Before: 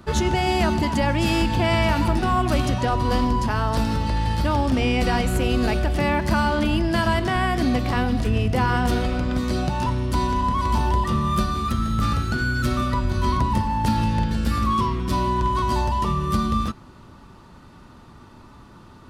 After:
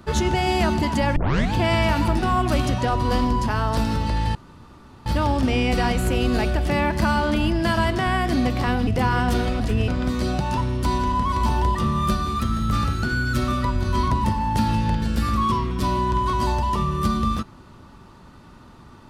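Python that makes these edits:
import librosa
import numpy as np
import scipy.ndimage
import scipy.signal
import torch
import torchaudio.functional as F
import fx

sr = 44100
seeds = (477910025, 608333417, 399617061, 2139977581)

y = fx.edit(x, sr, fx.tape_start(start_s=1.16, length_s=0.37),
    fx.insert_room_tone(at_s=4.35, length_s=0.71),
    fx.move(start_s=8.16, length_s=0.28, to_s=9.17), tone=tone)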